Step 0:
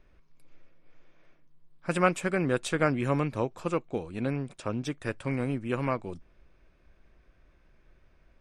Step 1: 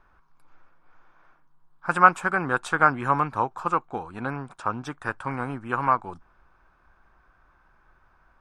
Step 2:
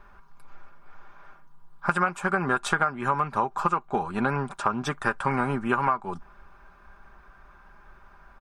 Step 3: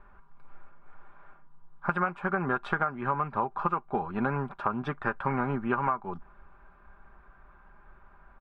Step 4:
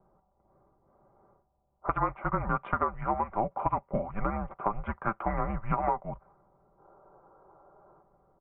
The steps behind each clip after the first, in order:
band shelf 1100 Hz +15.5 dB 1.3 oct; gain -2.5 dB
comb 5 ms, depth 55%; compressor 16:1, threshold -27 dBFS, peak gain reduction 18 dB; gain +7 dB
air absorption 410 m; gain -2 dB
mistuned SSB -220 Hz 190–2800 Hz; spectral gain 6.79–8.02, 280–1700 Hz +8 dB; low-pass opened by the level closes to 510 Hz, open at -25.5 dBFS

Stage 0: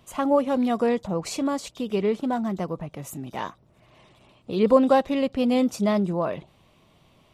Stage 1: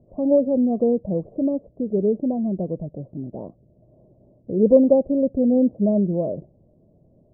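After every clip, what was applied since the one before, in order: elliptic low-pass 610 Hz, stop band 70 dB; gain +4 dB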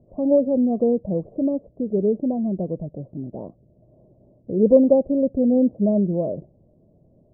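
nothing audible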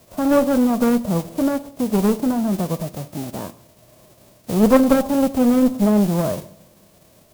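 spectral whitening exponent 0.3; two-slope reverb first 0.76 s, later 2.1 s, DRR 13.5 dB; one-sided clip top -21 dBFS; gain +4 dB

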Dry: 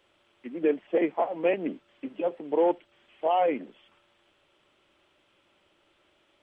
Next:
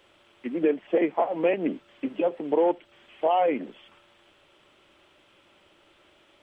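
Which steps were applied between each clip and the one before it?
compressor 2:1, threshold -30 dBFS, peak gain reduction 6.5 dB; gain +7 dB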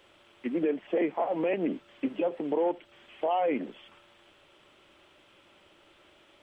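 limiter -19.5 dBFS, peak gain reduction 7.5 dB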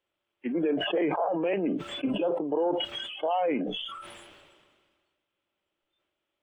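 spectral noise reduction 24 dB; sustainer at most 33 dB/s

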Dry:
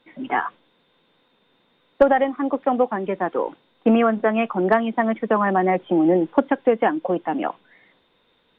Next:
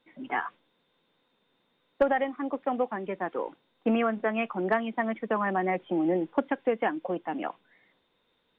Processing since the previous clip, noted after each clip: dynamic EQ 2300 Hz, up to +5 dB, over -38 dBFS, Q 1.3; gain -9 dB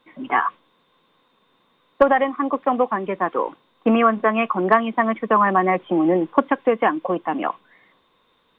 bell 1100 Hz +11.5 dB 0.25 oct; gain +8 dB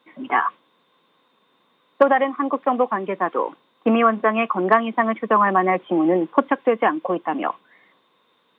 HPF 160 Hz 12 dB/oct

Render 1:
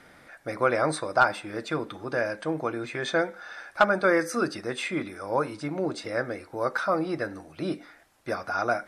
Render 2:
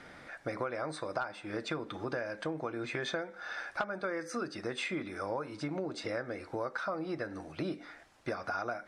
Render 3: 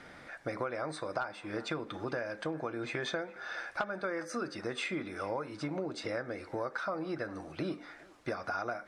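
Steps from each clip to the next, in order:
LPF 7200 Hz 12 dB/oct; compressor 10:1, threshold -34 dBFS, peak gain reduction 19.5 dB; gain +1.5 dB
narrowing echo 0.408 s, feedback 49%, band-pass 1100 Hz, level -17 dB

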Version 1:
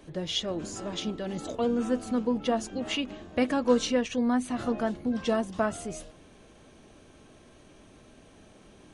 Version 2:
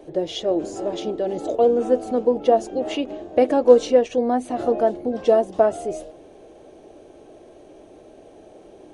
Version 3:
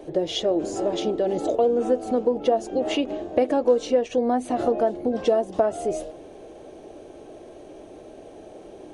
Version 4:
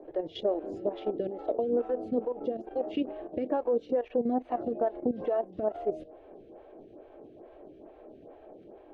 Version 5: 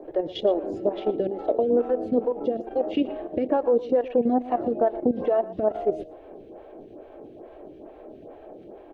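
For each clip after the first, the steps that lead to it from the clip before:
band shelf 500 Hz +14 dB; gain -1.5 dB
compressor 2.5:1, threshold -23 dBFS, peak gain reduction 11 dB; gain +3 dB
air absorption 390 m; level quantiser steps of 12 dB; photocell phaser 2.3 Hz
outdoor echo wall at 20 m, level -16 dB; gain +6.5 dB

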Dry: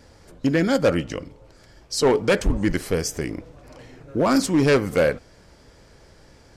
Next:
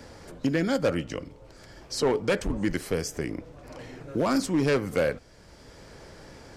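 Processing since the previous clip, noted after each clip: three-band squash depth 40%; gain -5.5 dB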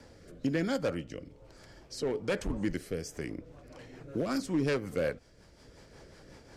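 rotary speaker horn 1.1 Hz, later 5.5 Hz, at 2.95; gain -4.5 dB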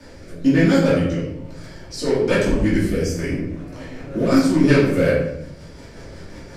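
reverb RT60 0.85 s, pre-delay 3 ms, DRR -9 dB; gain +4 dB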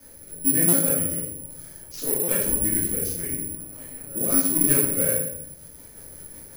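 careless resampling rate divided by 4×, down none, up zero stuff; stuck buffer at 0.68/2.23, samples 256, times 8; gain -11.5 dB

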